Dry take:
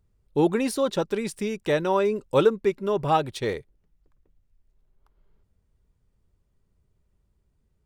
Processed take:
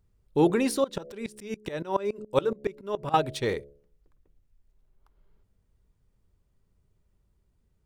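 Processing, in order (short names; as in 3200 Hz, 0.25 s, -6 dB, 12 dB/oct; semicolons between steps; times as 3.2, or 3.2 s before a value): de-hum 70.82 Hz, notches 10; 0.84–3.14 dB-ramp tremolo swelling 7.1 Hz, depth 21 dB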